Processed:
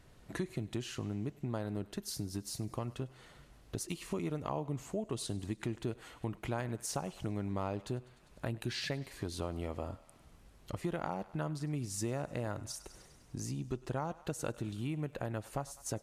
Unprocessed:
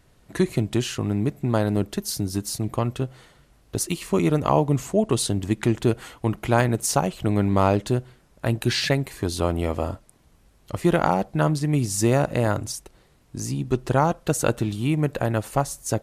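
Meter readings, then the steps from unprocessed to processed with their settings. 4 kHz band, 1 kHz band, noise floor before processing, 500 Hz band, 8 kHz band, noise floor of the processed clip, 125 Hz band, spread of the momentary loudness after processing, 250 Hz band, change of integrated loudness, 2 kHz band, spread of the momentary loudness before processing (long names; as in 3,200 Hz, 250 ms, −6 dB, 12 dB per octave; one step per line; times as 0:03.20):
−13.5 dB, −17.0 dB, −58 dBFS, −16.5 dB, −14.0 dB, −61 dBFS, −15.0 dB, 6 LU, −15.5 dB, −15.5 dB, −15.5 dB, 8 LU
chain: high-shelf EQ 8,900 Hz −5 dB
on a send: feedback echo with a high-pass in the loop 100 ms, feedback 64%, high-pass 810 Hz, level −19 dB
on the sum: downward compressor 2.5 to 1, threshold −39 dBFS, peak gain reduction 16.5 dB
level −2 dB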